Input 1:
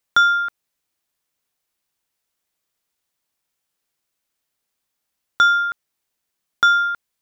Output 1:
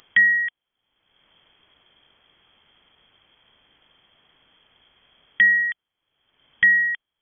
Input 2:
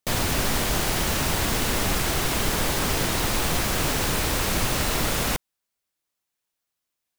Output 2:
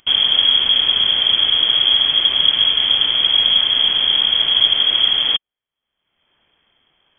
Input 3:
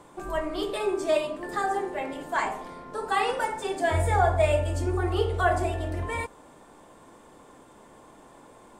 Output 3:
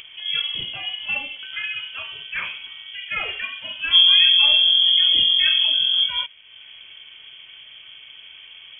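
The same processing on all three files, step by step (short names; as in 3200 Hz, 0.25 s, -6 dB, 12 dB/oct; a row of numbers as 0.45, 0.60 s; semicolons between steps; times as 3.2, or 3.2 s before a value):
resonant low shelf 220 Hz +11 dB, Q 1.5; upward compressor, threshold -34 dBFS; inverted band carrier 3300 Hz; gain -1 dB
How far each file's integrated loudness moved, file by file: -0.5, +11.5, +11.0 LU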